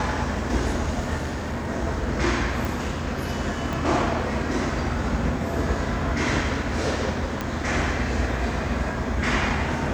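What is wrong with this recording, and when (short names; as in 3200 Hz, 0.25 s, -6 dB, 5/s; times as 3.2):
1.17–1.7 clipped -24.5 dBFS
2.65 pop
3.73 pop
7.41 pop -13 dBFS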